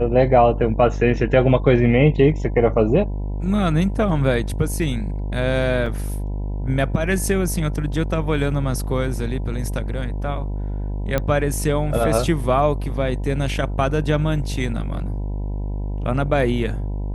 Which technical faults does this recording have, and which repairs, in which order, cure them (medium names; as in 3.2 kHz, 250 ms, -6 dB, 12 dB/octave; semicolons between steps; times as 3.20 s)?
buzz 50 Hz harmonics 20 -25 dBFS
5.86 s: dropout 3.3 ms
11.18 s: pop -8 dBFS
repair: de-click; de-hum 50 Hz, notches 20; interpolate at 5.86 s, 3.3 ms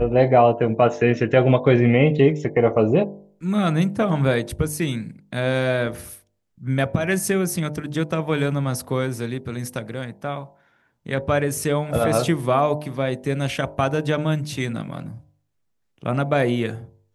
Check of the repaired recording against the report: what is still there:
nothing left